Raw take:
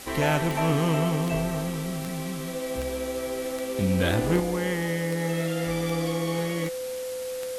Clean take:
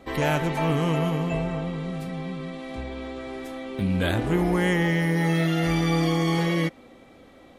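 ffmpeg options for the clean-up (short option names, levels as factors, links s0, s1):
-af "adeclick=t=4,bandreject=f=510:w=30,afwtdn=0.0089,asetnsamples=n=441:p=0,asendcmd='4.4 volume volume 6dB',volume=1"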